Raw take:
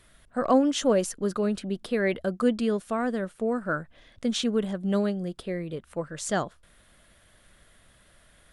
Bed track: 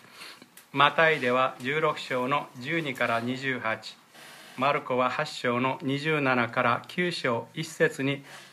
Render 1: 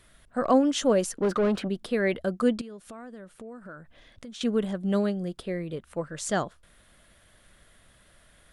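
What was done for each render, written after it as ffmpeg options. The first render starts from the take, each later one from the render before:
ffmpeg -i in.wav -filter_complex "[0:a]asplit=3[link_01][link_02][link_03];[link_01]afade=type=out:start_time=1.15:duration=0.02[link_04];[link_02]asplit=2[link_05][link_06];[link_06]highpass=frequency=720:poles=1,volume=22dB,asoftclip=type=tanh:threshold=-16.5dB[link_07];[link_05][link_07]amix=inputs=2:normalize=0,lowpass=frequency=1200:poles=1,volume=-6dB,afade=type=in:start_time=1.15:duration=0.02,afade=type=out:start_time=1.67:duration=0.02[link_08];[link_03]afade=type=in:start_time=1.67:duration=0.02[link_09];[link_04][link_08][link_09]amix=inputs=3:normalize=0,asettb=1/sr,asplit=3[link_10][link_11][link_12];[link_10]atrim=end=2.614[link_13];[link_11]atrim=start=2.61:end=4.41,asetpts=PTS-STARTPTS,afade=type=in:duration=0.004:curve=qsin,afade=type=out:start_time=1.796:duration=0.004:curve=qsin,acompressor=threshold=-41dB:ratio=5:attack=3.2:release=140:knee=1:detection=peak[link_14];[link_12]atrim=start=4.406[link_15];[link_13][link_14]acrossfade=duration=0.004:curve1=hsin:curve2=qsin[link_16];[link_16][link_15]acrossfade=duration=0.004:curve1=qsin:curve2=hsin" out.wav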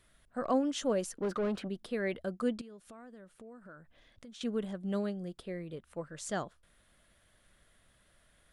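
ffmpeg -i in.wav -af "volume=-8.5dB" out.wav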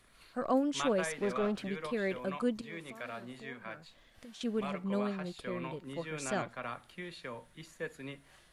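ffmpeg -i in.wav -i bed.wav -filter_complex "[1:a]volume=-16.5dB[link_01];[0:a][link_01]amix=inputs=2:normalize=0" out.wav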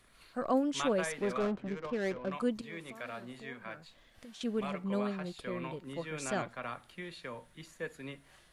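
ffmpeg -i in.wav -filter_complex "[0:a]asettb=1/sr,asplit=3[link_01][link_02][link_03];[link_01]atrim=end=1.404[link_04];[link_02]atrim=start=1.4:end=2.32,asetpts=PTS-STARTPTS,afade=type=in:duration=0.004:curve=qsin,afade=type=out:start_time=0.916:duration=0.004:curve=qsin,adynamicsmooth=sensitivity=7.5:basefreq=660[link_05];[link_03]atrim=start=2.316[link_06];[link_04][link_05]acrossfade=duration=0.004:curve1=hsin:curve2=qsin[link_07];[link_07][link_06]acrossfade=duration=0.004:curve1=qsin:curve2=hsin" out.wav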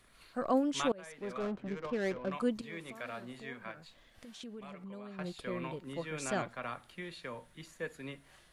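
ffmpeg -i in.wav -filter_complex "[0:a]asettb=1/sr,asplit=3[link_01][link_02][link_03];[link_01]atrim=end=3.714[link_04];[link_02]atrim=start=3.71:end=5.19,asetpts=PTS-STARTPTS,afade=type=in:duration=0.004:curve=qsin,afade=type=out:start_time=1.476:duration=0.004:curve=qsin,acompressor=threshold=-45dB:ratio=4:attack=3.2:release=140:knee=1:detection=peak[link_05];[link_03]atrim=start=5.186[link_06];[link_04][link_05]acrossfade=duration=0.004:curve1=hsin:curve2=qsin[link_07];[link_07][link_06]acrossfade=duration=0.004:curve1=qsin:curve2=hsin,asplit=2[link_08][link_09];[link_08]atrim=end=0.92,asetpts=PTS-STARTPTS,afade=type=out:start_time=0.916:duration=0.004:curve=hsin:silence=0.0630957[link_10];[link_09]atrim=start=0.92,asetpts=PTS-STARTPTS,afade=type=in:duration=0.9:silence=0.0630957[link_11];[link_10][link_11]concat=n=2:v=0:a=1" out.wav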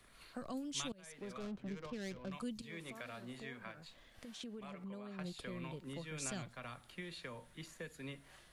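ffmpeg -i in.wav -filter_complex "[0:a]acrossover=split=180|3000[link_01][link_02][link_03];[link_02]acompressor=threshold=-46dB:ratio=10[link_04];[link_01][link_04][link_03]amix=inputs=3:normalize=0" out.wav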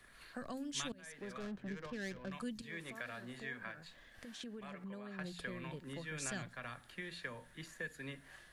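ffmpeg -i in.wav -af "equalizer=frequency=1700:width_type=o:width=0.29:gain=10.5,bandreject=frequency=87.1:width_type=h:width=4,bandreject=frequency=174.2:width_type=h:width=4,bandreject=frequency=261.3:width_type=h:width=4" out.wav

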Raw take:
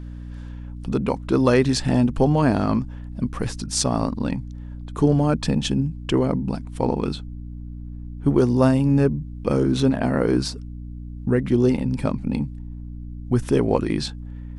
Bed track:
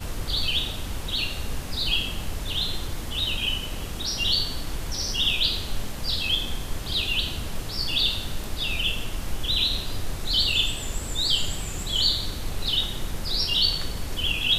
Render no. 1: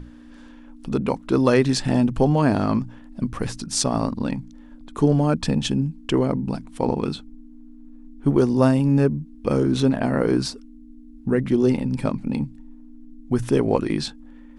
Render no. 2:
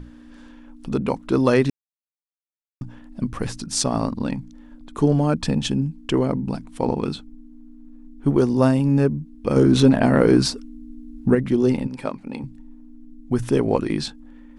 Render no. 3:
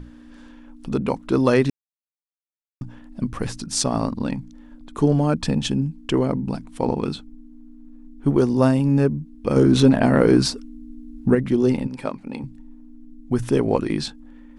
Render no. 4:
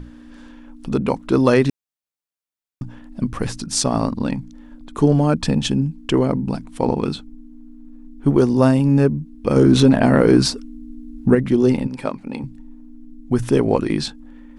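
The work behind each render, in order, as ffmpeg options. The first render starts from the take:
ffmpeg -i in.wav -af "bandreject=frequency=60:width_type=h:width=6,bandreject=frequency=120:width_type=h:width=6,bandreject=frequency=180:width_type=h:width=6" out.wav
ffmpeg -i in.wav -filter_complex "[0:a]asettb=1/sr,asplit=3[link_01][link_02][link_03];[link_01]atrim=end=9.564[link_04];[link_02]atrim=start=9.56:end=11.35,asetpts=PTS-STARTPTS,afade=type=in:duration=0.004:curve=qsin,afade=type=out:start_time=1.786:duration=0.004:curve=qsin,acontrast=41[link_05];[link_03]atrim=start=11.346[link_06];[link_04][link_05]acrossfade=duration=0.004:curve1=hsin:curve2=qsin[link_07];[link_07][link_06]acrossfade=duration=0.004:curve1=qsin:curve2=hsin,asettb=1/sr,asplit=3[link_08][link_09][link_10];[link_08]atrim=end=11.874[link_11];[link_09]atrim=start=11.87:end=12.44,asetpts=PTS-STARTPTS,afade=type=in:duration=0.004:curve=qsin,afade=type=out:start_time=0.566:duration=0.004:curve=qsin,bass=frequency=250:gain=-14,treble=frequency=4000:gain=-4[link_12];[link_10]atrim=start=12.436[link_13];[link_11][link_12]acrossfade=duration=0.004:curve1=hsin:curve2=qsin[link_14];[link_14][link_13]acrossfade=duration=0.004:curve1=qsin:curve2=hsin,asplit=3[link_15][link_16][link_17];[link_15]atrim=end=1.7,asetpts=PTS-STARTPTS,afade=type=out:start_time=1.696:duration=0.004:curve=hsin[link_18];[link_16]atrim=start=1.7:end=2.81,asetpts=PTS-STARTPTS,volume=0[link_19];[link_17]atrim=start=2.81,asetpts=PTS-STARTPTS,afade=type=in:duration=0.004:curve=hsin[link_20];[link_18][link_19][link_20]concat=n=3:v=0:a=1" out.wav
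ffmpeg -i in.wav -af anull out.wav
ffmpeg -i in.wav -af "volume=3dB,alimiter=limit=-3dB:level=0:latency=1" out.wav

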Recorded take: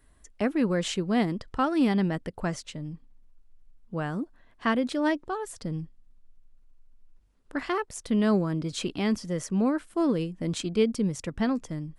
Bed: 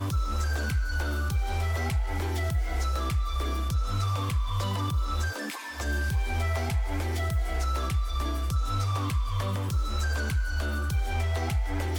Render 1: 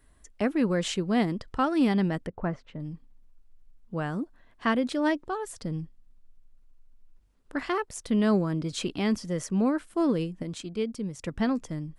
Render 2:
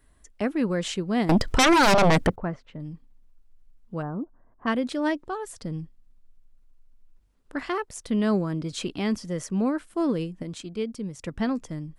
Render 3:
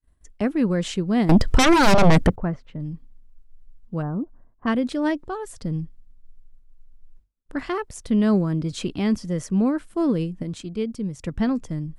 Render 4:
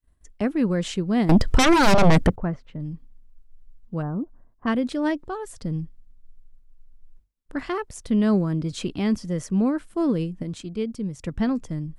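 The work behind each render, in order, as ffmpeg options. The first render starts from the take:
ffmpeg -i in.wav -filter_complex "[0:a]asettb=1/sr,asplit=3[link_01][link_02][link_03];[link_01]atrim=end=2.274[link_04];[link_02]atrim=start=2.27:end=2.8,asetpts=PTS-STARTPTS,afade=type=in:duration=0.004:curve=qsin,afade=type=out:start_time=0.526:duration=0.004:curve=qsin,lowpass=1600[link_05];[link_03]atrim=start=2.796[link_06];[link_04][link_05]acrossfade=duration=0.004:curve1=hsin:curve2=qsin[link_07];[link_07][link_06]acrossfade=duration=0.004:curve1=qsin:curve2=hsin,asplit=3[link_08][link_09][link_10];[link_08]atrim=end=10.432[link_11];[link_09]atrim=start=10.428:end=11.222,asetpts=PTS-STARTPTS,volume=-6.5dB[link_12];[link_10]atrim=start=11.218[link_13];[link_11][link_12]acrossfade=duration=0.004:curve1=hsin:curve2=hsin[link_14];[link_14][link_13]acrossfade=duration=0.004:curve1=hsin:curve2=hsin" out.wav
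ffmpeg -i in.wav -filter_complex "[0:a]asettb=1/sr,asplit=3[link_01][link_02][link_03];[link_01]atrim=end=1.294[link_04];[link_02]atrim=start=1.29:end=2.36,asetpts=PTS-STARTPTS,afade=type=in:duration=0.004:curve=qsin,afade=type=out:start_time=1.066:duration=0.004:curve=qsin,aeval=exprs='0.2*sin(PI/2*5.01*val(0)/0.2)':channel_layout=same[link_05];[link_03]atrim=start=2.356[link_06];[link_04][link_05]acrossfade=duration=0.004:curve1=hsin:curve2=qsin[link_07];[link_07][link_06]acrossfade=duration=0.004:curve1=qsin:curve2=hsin,asplit=3[link_08][link_09][link_10];[link_08]afade=type=out:start_time=4.01:duration=0.02[link_11];[link_09]lowpass=frequency=1200:width=0.5412,lowpass=frequency=1200:width=1.3066,afade=type=in:start_time=4.01:duration=0.02,afade=type=out:start_time=4.66:duration=0.02[link_12];[link_10]afade=type=in:start_time=4.66:duration=0.02[link_13];[link_11][link_12][link_13]amix=inputs=3:normalize=0" out.wav
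ffmpeg -i in.wav -af "agate=range=-33dB:threshold=-50dB:ratio=3:detection=peak,lowshelf=frequency=240:gain=9" out.wav
ffmpeg -i in.wav -af "volume=-1dB" out.wav

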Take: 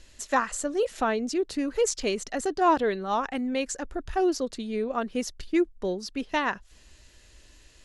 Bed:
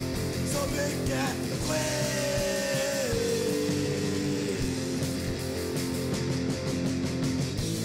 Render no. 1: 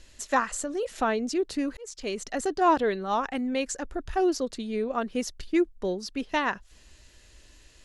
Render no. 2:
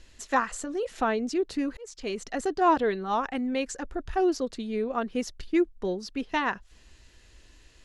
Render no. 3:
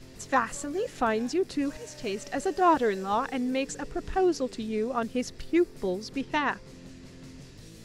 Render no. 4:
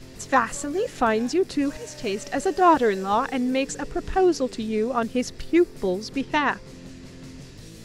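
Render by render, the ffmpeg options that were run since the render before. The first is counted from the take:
ffmpeg -i in.wav -filter_complex "[0:a]asettb=1/sr,asplit=3[link_01][link_02][link_03];[link_01]atrim=end=0.514[link_04];[link_02]atrim=start=0.51:end=0.97,asetpts=PTS-STARTPTS,afade=type=in:duration=0.004:curve=qsin,afade=type=out:start_time=0.456:duration=0.004:curve=qsin,acompressor=threshold=-27dB:ratio=3:attack=3.2:release=140:knee=1:detection=peak[link_05];[link_03]atrim=start=0.966[link_06];[link_04][link_05]acrossfade=duration=0.004:curve1=hsin:curve2=qsin[link_07];[link_07][link_06]acrossfade=duration=0.004:curve1=qsin:curve2=hsin,asplit=2[link_08][link_09];[link_08]atrim=end=1.77,asetpts=PTS-STARTPTS,afade=type=out:start_time=1.766:duration=0.004:curve=hsin[link_10];[link_09]atrim=start=1.77,asetpts=PTS-STARTPTS,afade=type=in:duration=0.54[link_11];[link_10][link_11]concat=n=2:v=0:a=1" out.wav
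ffmpeg -i in.wav -af "highshelf=frequency=6100:gain=-7.5,bandreject=frequency=590:width=12" out.wav
ffmpeg -i in.wav -i bed.wav -filter_complex "[1:a]volume=-18.5dB[link_01];[0:a][link_01]amix=inputs=2:normalize=0" out.wav
ffmpeg -i in.wav -af "volume=5dB" out.wav

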